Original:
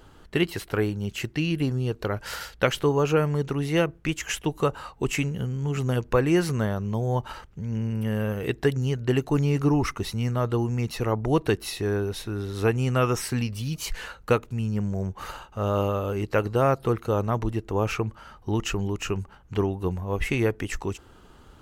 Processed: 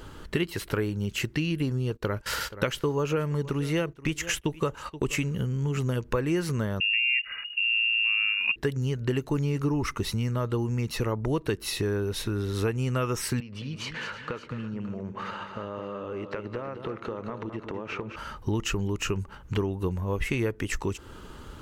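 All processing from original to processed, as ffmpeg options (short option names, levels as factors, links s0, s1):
-filter_complex "[0:a]asettb=1/sr,asplit=3[s0][s1][s2];[s0]atrim=end=1.904[s3];[s1]atrim=start=1.9:end=5.37,asetpts=PTS-STARTPTS,afade=t=in:d=0.004:c=qsin,afade=t=out:st=3.466:d=0.004:c=qsin,agate=range=0.126:threshold=0.01:ratio=16:release=100:detection=peak,aecho=1:1:477:0.0841,atrim=end_sample=153027[s4];[s2]atrim=start=5.366[s5];[s3][s4]acrossfade=d=0.004:c1=hsin:c2=qsin[s6];[s6][s5]acrossfade=d=0.004:c1=qsin:c2=hsin,asettb=1/sr,asplit=3[s7][s8][s9];[s7]atrim=end=6.804[s10];[s8]atrim=start=6.8:end=8.56,asetpts=PTS-STARTPTS,afade=t=in:d=0.004:c=qsin,afade=t=out:st=1.756:d=0.004:c=qsin,tiltshelf=f=1100:g=7,lowpass=f=2500:t=q:w=0.5098,lowpass=f=2500:t=q:w=0.6013,lowpass=f=2500:t=q:w=0.9,lowpass=f=2500:t=q:w=2.563,afreqshift=-2900[s11];[s9]atrim=start=8.556[s12];[s10][s11]acrossfade=d=0.004:c1=hsin:c2=qsin[s13];[s13][s12]acrossfade=d=0.004:c1=qsin:c2=hsin,asettb=1/sr,asplit=3[s14][s15][s16];[s14]atrim=end=13.404[s17];[s15]atrim=start=13.4:end=18.16,asetpts=PTS-STARTPTS,afade=t=in:d=0.004:c=qsin,afade=t=out:st=4.756:d=0.004:c=qsin,highpass=170,lowpass=3000,acompressor=threshold=0.0112:ratio=5:attack=3.2:release=140:knee=1:detection=peak,aecho=1:1:214|322|570:0.376|0.133|0.158,atrim=end_sample=209916[s18];[s16]atrim=start=18.156[s19];[s17][s18]acrossfade=d=0.004:c1=hsin:c2=qsin[s20];[s20][s19]acrossfade=d=0.004:c1=qsin:c2=hsin,acompressor=threshold=0.0178:ratio=3,equalizer=f=740:t=o:w=0.21:g=-9.5,volume=2.37"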